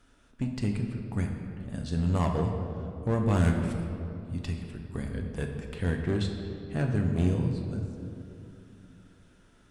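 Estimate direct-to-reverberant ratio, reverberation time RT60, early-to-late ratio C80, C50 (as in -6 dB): 2.0 dB, 2.9 s, 6.0 dB, 4.5 dB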